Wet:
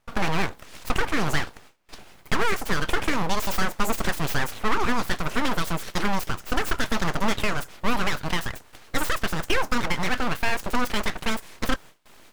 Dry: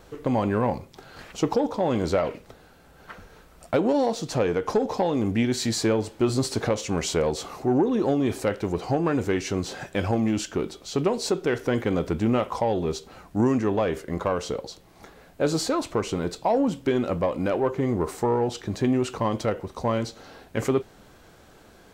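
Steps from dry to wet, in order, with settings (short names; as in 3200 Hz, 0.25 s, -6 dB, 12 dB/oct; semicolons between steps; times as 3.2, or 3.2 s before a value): speed glide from 157% -> 199%; full-wave rectifier; gate with hold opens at -41 dBFS; gain +3 dB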